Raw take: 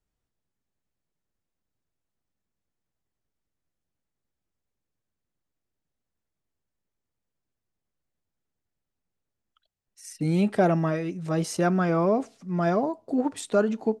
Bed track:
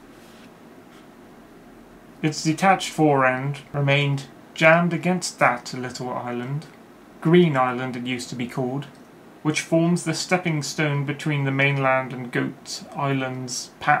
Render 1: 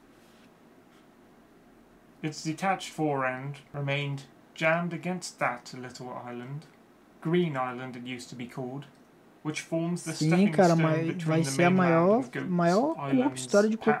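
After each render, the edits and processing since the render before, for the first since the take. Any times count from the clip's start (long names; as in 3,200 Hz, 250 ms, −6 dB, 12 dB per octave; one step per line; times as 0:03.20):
mix in bed track −10.5 dB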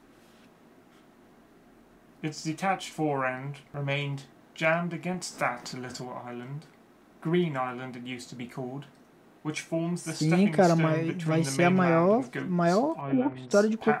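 0:05.14–0:06.05: upward compression, threshold −30 dBFS
0:13.01–0:13.51: high-frequency loss of the air 480 metres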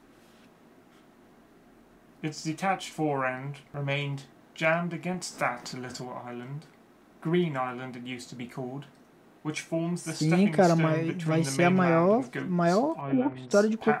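no processing that can be heard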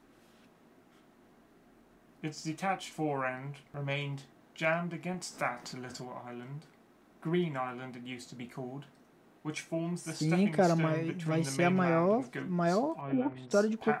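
level −5 dB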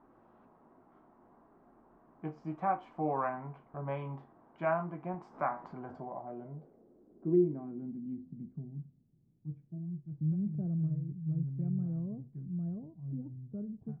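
low-pass filter sweep 1,000 Hz → 130 Hz, 0:05.68–0:09.06
tuned comb filter 51 Hz, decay 0.37 s, harmonics all, mix 40%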